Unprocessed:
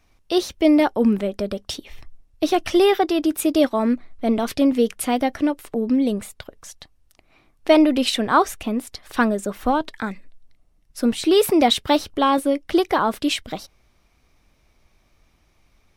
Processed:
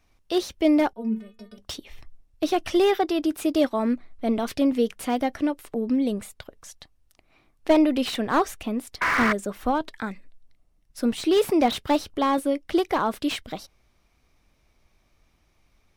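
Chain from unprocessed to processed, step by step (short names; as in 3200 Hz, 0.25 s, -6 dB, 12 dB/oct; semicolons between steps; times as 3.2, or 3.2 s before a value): 0.93–1.58 metallic resonator 220 Hz, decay 0.29 s, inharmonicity 0.008; 9.01–9.33 painted sound noise 970–2300 Hz -15 dBFS; slew limiter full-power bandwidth 240 Hz; gain -4 dB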